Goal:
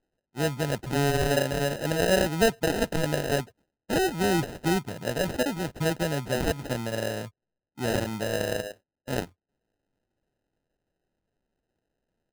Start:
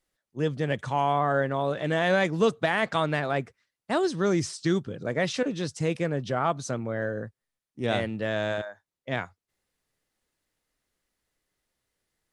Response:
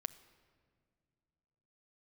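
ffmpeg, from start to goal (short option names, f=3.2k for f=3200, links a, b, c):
-af "acrusher=samples=39:mix=1:aa=0.000001"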